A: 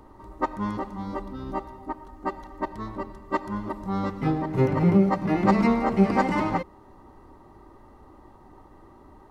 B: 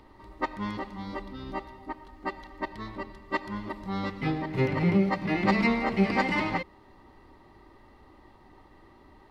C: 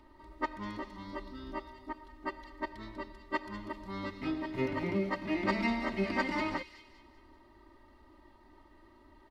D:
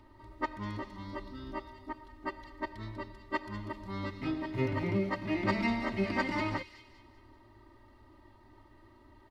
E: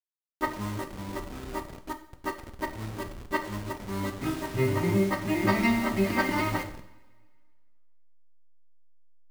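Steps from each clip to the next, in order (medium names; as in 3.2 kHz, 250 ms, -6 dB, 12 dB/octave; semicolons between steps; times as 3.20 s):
high-order bell 3 kHz +10 dB; trim -4.5 dB
comb 3.2 ms, depth 71%; feedback echo behind a high-pass 194 ms, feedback 41%, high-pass 3.7 kHz, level -5.5 dB; trim -7.5 dB
peaking EQ 110 Hz +12.5 dB 0.51 oct
send-on-delta sampling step -40.5 dBFS; two-slope reverb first 0.56 s, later 1.8 s, from -18 dB, DRR 6 dB; trim +5 dB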